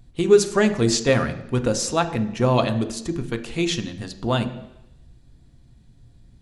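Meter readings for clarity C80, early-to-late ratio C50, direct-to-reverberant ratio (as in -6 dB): 14.5 dB, 12.5 dB, 6.5 dB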